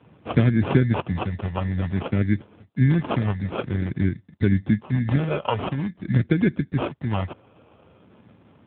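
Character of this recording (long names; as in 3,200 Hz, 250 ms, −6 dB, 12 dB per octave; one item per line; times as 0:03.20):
phaser sweep stages 2, 0.5 Hz, lowest notch 290–1,100 Hz
aliases and images of a low sample rate 1,900 Hz, jitter 0%
AMR narrowband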